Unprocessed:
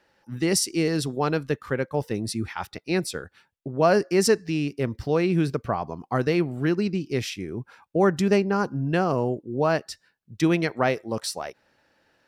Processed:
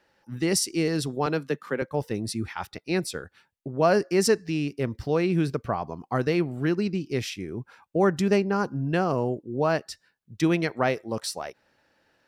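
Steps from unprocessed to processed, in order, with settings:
0:01.26–0:01.82: Butterworth high-pass 150 Hz 48 dB per octave
level −1.5 dB

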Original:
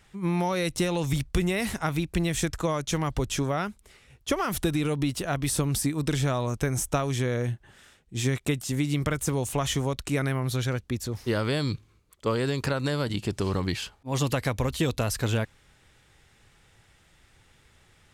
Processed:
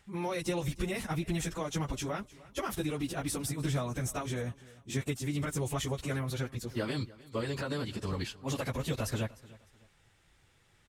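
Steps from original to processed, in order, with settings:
time stretch by phase vocoder 0.6×
repeating echo 303 ms, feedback 32%, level −20.5 dB
level −3.5 dB

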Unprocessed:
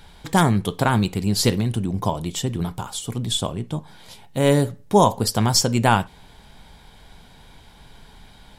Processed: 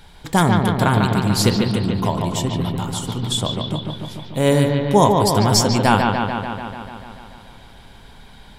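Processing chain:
bucket-brigade delay 146 ms, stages 4,096, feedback 71%, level −4 dB
level +1 dB

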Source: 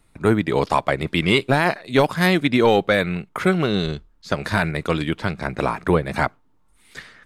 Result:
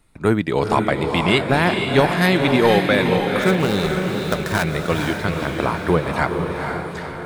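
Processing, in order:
0:03.42–0:04.64: gap after every zero crossing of 0.1 ms
on a send: feedback delay with all-pass diffusion 475 ms, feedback 53%, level −4 dB

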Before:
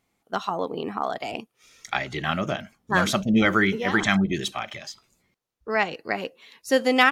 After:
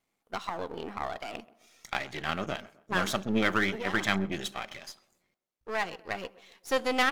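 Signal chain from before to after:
gain on one half-wave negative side −12 dB
low-shelf EQ 150 Hz −7.5 dB
tape delay 128 ms, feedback 48%, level −18.5 dB, low-pass 1,500 Hz
level −3 dB

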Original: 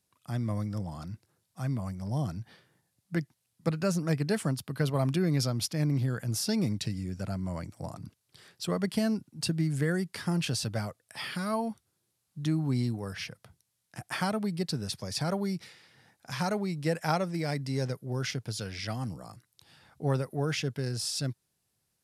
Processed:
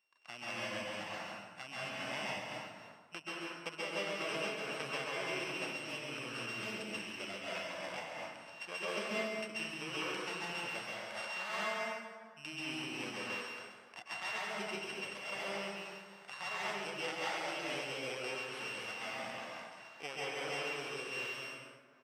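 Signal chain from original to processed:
samples sorted by size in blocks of 16 samples
high-pass filter 720 Hz 12 dB per octave
high-shelf EQ 2,800 Hz +11.5 dB
downward compressor, threshold −32 dBFS, peak gain reduction 15.5 dB
head-to-tape spacing loss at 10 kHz 26 dB
single-tap delay 137 ms −3.5 dB
dense smooth reverb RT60 1.7 s, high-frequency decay 0.55×, pre-delay 115 ms, DRR −5.5 dB
amplitude modulation by smooth noise, depth 55%
level +4 dB

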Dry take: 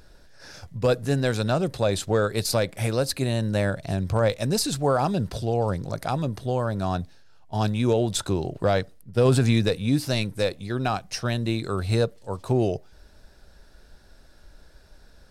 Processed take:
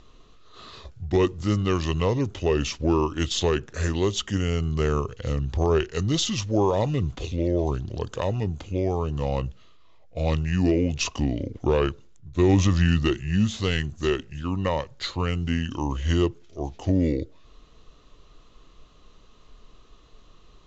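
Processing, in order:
Butterworth low-pass 10,000 Hz 96 dB per octave
wrong playback speed 45 rpm record played at 33 rpm

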